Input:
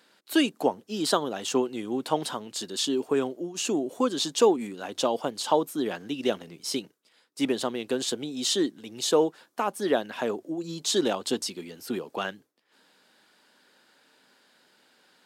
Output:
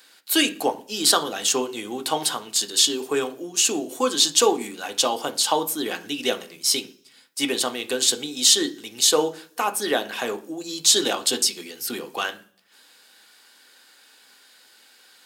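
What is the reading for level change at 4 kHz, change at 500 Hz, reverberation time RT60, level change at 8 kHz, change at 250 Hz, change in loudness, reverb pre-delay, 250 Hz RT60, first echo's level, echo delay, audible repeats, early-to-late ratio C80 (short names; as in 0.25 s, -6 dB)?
+10.5 dB, +0.5 dB, 0.50 s, +13.0 dB, -1.0 dB, +6.5 dB, 3 ms, 0.75 s, none, none, none, 21.0 dB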